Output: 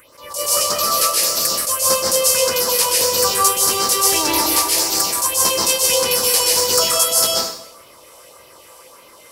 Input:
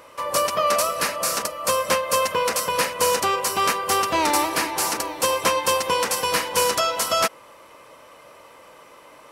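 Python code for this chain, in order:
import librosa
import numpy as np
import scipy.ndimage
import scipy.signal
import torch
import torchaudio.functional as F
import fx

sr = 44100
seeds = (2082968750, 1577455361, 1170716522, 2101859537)

y = fx.peak_eq(x, sr, hz=180.0, db=-3.5, octaves=0.58)
y = fx.phaser_stages(y, sr, stages=4, low_hz=180.0, high_hz=2500.0, hz=1.7, feedback_pct=40)
y = fx.high_shelf(y, sr, hz=3800.0, db=12.0)
y = fx.rev_plate(y, sr, seeds[0], rt60_s=0.69, hf_ratio=0.9, predelay_ms=115, drr_db=-3.0)
y = fx.attack_slew(y, sr, db_per_s=120.0)
y = y * librosa.db_to_amplitude(-1.0)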